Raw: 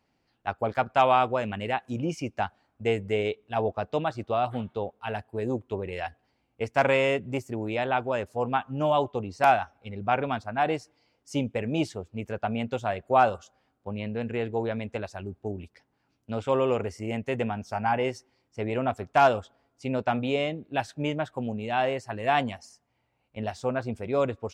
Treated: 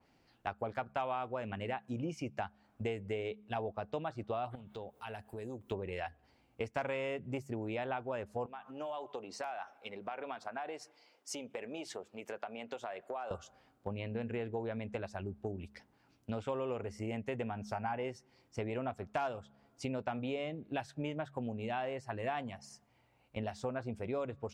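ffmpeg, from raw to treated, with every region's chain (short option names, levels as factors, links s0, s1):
-filter_complex "[0:a]asettb=1/sr,asplit=3[s0][s1][s2];[s0]atrim=end=4.554[s3];[s1]atrim=start=4.55:end=5.71,asetpts=PTS-STARTPTS,afade=t=in:d=0.004:c=qsin,afade=t=out:st=1.156:d=0.004:c=qsin,aemphasis=mode=production:type=50kf,acompressor=threshold=0.00355:ratio=3:attack=3.2:release=140:knee=1:detection=peak[s4];[s2]atrim=start=5.706[s5];[s3][s4]acrossfade=d=0.004:c1=hsin:c2=qsin[s6];[s6][s5]acrossfade=d=0.004:c1=qsin:c2=hsin,asettb=1/sr,asplit=3[s7][s8][s9];[s7]atrim=end=8.464[s10];[s8]atrim=start=8.46:end=13.31,asetpts=PTS-STARTPTS,afade=t=in:d=0.004:c=qsin,afade=t=out:st=4.846:d=0.004:c=qsin,acompressor=threshold=0.0158:ratio=8:attack=3.2:release=140:knee=1:detection=peak,highpass=410[s11];[s9]atrim=start=13.306[s12];[s10][s11]acrossfade=d=0.004:c1=hsin:c2=qsin[s13];[s13][s12]acrossfade=d=0.004:c1=qsin:c2=hsin,bandreject=f=69.81:t=h:w=4,bandreject=f=139.62:t=h:w=4,bandreject=f=209.43:t=h:w=4,acompressor=threshold=0.00891:ratio=4,adynamicequalizer=threshold=0.00126:dfrequency=2800:dqfactor=0.7:tfrequency=2800:tqfactor=0.7:attack=5:release=100:ratio=0.375:range=3:mode=cutabove:tftype=highshelf,volume=1.5"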